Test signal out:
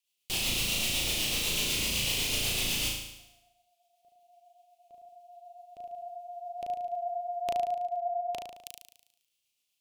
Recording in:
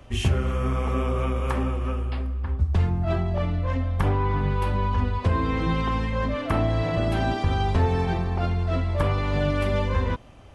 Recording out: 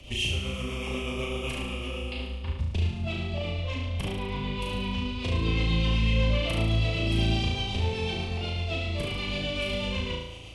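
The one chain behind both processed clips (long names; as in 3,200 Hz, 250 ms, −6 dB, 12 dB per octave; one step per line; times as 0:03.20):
high shelf with overshoot 2,100 Hz +9 dB, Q 3
downward compressor 6 to 1, threshold −27 dBFS
rotating-speaker cabinet horn 8 Hz
flutter between parallel walls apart 6.2 metres, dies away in 0.85 s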